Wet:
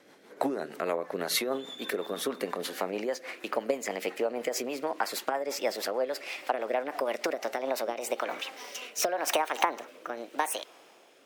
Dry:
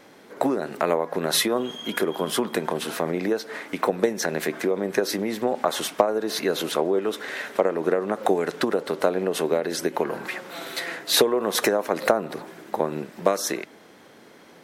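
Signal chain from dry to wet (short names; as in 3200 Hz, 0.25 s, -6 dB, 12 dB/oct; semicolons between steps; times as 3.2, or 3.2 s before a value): speed glide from 99% -> 161%; low shelf 170 Hz -11.5 dB; rotary speaker horn 6.3 Hz, later 0.85 Hz, at 7.15; gain -3.5 dB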